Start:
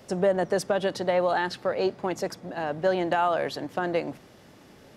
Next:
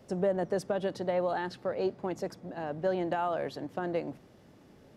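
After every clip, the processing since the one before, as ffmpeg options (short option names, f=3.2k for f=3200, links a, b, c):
-af "tiltshelf=f=760:g=4,volume=-7dB"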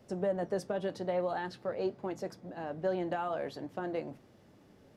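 -af "flanger=delay=8.6:depth=2.4:regen=-62:speed=0.49:shape=sinusoidal,volume=1dB"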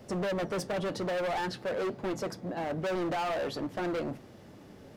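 -af "asoftclip=type=hard:threshold=-38.5dB,volume=9dB"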